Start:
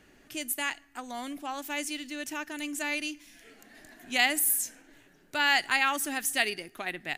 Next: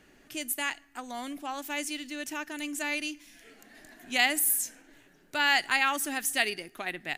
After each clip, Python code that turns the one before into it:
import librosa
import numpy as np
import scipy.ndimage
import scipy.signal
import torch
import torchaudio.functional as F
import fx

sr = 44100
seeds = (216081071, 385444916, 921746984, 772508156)

y = fx.peak_eq(x, sr, hz=77.0, db=-4.5, octaves=0.77)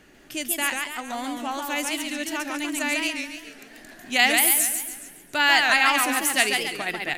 y = fx.echo_warbled(x, sr, ms=139, feedback_pct=47, rate_hz=2.8, cents=193, wet_db=-4.0)
y = y * librosa.db_to_amplitude(5.5)